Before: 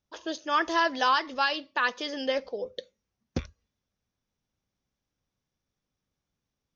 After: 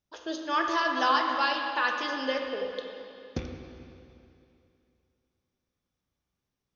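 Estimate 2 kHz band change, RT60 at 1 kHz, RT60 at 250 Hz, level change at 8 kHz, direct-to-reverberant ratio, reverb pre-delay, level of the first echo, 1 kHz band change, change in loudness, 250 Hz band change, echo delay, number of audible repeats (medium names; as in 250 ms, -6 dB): 0.0 dB, 2.7 s, 2.7 s, no reading, 1.5 dB, 16 ms, no echo, +0.5 dB, -0.5 dB, +0.5 dB, no echo, no echo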